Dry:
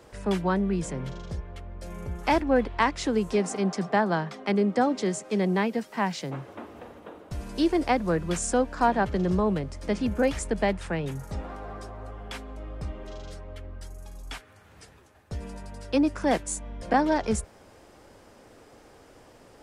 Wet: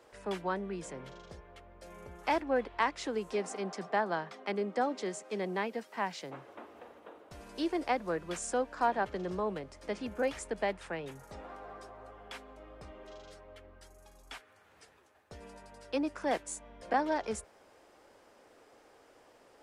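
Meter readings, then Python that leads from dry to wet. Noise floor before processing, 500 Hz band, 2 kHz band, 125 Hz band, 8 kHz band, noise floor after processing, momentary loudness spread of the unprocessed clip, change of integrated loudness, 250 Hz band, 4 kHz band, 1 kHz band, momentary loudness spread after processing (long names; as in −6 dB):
−54 dBFS, −7.0 dB, −6.0 dB, −16.5 dB, −9.0 dB, −62 dBFS, 18 LU, −8.0 dB, −12.0 dB, −7.5 dB, −6.0 dB, 20 LU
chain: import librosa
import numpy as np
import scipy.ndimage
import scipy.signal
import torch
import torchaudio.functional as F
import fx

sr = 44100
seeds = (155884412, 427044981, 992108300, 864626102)

y = fx.bass_treble(x, sr, bass_db=-13, treble_db=-3)
y = y * librosa.db_to_amplitude(-6.0)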